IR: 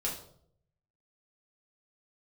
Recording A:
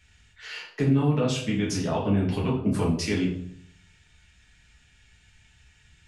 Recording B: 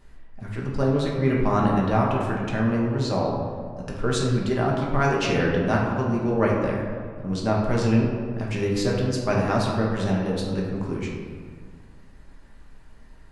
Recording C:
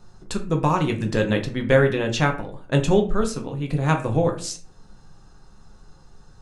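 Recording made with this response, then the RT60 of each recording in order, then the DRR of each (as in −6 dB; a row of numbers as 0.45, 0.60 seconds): A; 0.65, 1.9, 0.45 seconds; −4.5, −3.5, 2.5 decibels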